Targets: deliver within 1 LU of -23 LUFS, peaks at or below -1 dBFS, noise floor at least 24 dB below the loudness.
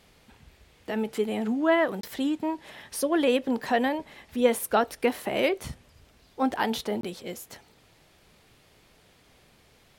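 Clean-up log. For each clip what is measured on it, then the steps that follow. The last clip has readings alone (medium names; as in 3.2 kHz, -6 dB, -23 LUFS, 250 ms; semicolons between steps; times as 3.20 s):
dropouts 2; longest dropout 23 ms; loudness -27.5 LUFS; peak level -9.0 dBFS; loudness target -23.0 LUFS
-> interpolate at 2.01/7.01 s, 23 ms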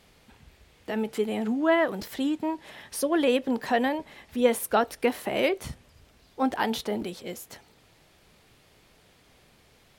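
dropouts 0; loudness -27.5 LUFS; peak level -9.0 dBFS; loudness target -23.0 LUFS
-> trim +4.5 dB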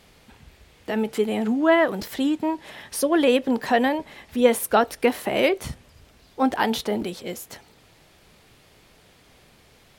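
loudness -23.0 LUFS; peak level -4.5 dBFS; noise floor -56 dBFS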